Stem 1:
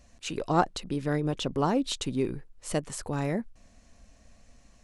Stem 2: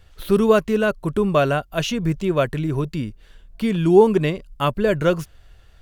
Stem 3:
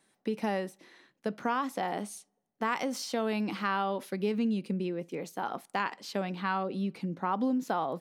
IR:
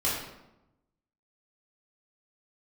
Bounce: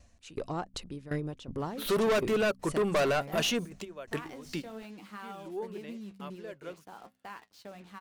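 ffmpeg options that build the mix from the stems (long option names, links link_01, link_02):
-filter_complex "[0:a]aeval=exprs='val(0)*pow(10,-18*if(lt(mod(2.7*n/s,1),2*abs(2.7)/1000),1-mod(2.7*n/s,1)/(2*abs(2.7)/1000),(mod(2.7*n/s,1)-2*abs(2.7)/1000)/(1-2*abs(2.7)/1000))/20)':channel_layout=same,volume=-1dB,asplit=2[link_01][link_02];[1:a]highpass=320,adelay=1600,volume=0.5dB[link_03];[2:a]acrusher=bits=6:mix=0:aa=0.5,flanger=delay=8.7:depth=7.3:regen=56:speed=0.52:shape=sinusoidal,adelay=1500,volume=-10dB[link_04];[link_02]apad=whole_len=326938[link_05];[link_03][link_05]sidechaingate=range=-24dB:threshold=-59dB:ratio=16:detection=peak[link_06];[link_01][link_06][link_04]amix=inputs=3:normalize=0,asoftclip=type=tanh:threshold=-23.5dB,equalizer=frequency=87:width=1.3:gain=5.5,bandreject=frequency=63.93:width_type=h:width=4,bandreject=frequency=127.86:width_type=h:width=4,bandreject=frequency=191.79:width_type=h:width=4,bandreject=frequency=255.72:width_type=h:width=4"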